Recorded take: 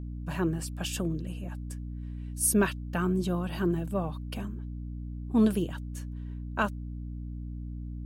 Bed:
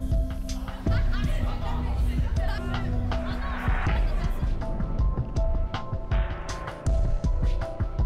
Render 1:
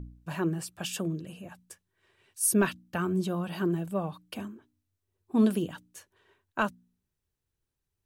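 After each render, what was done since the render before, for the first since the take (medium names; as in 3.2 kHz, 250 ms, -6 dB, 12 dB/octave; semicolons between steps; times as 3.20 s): de-hum 60 Hz, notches 5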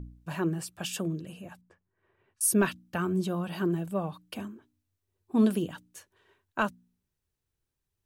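1.61–2.41 s: low-pass 1.4 kHz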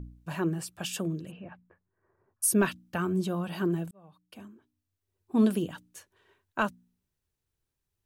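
1.30–2.42 s: low-pass 3.1 kHz -> 1.2 kHz 24 dB/octave; 3.91–5.36 s: fade in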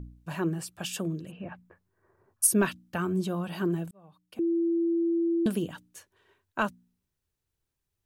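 1.40–2.47 s: gain +5 dB; 4.39–5.46 s: bleep 336 Hz -23 dBFS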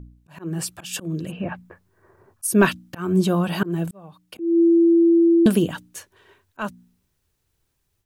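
slow attack 232 ms; level rider gain up to 11.5 dB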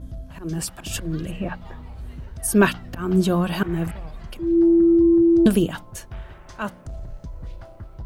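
add bed -10.5 dB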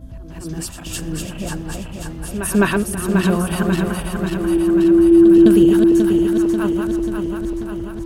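backward echo that repeats 269 ms, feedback 79%, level -4 dB; on a send: reverse echo 208 ms -11.5 dB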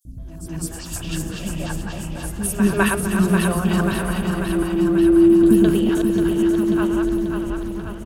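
chunks repeated in reverse 352 ms, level -10 dB; three bands offset in time highs, lows, mids 50/180 ms, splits 380/5500 Hz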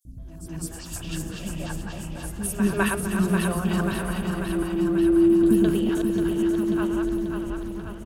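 trim -5 dB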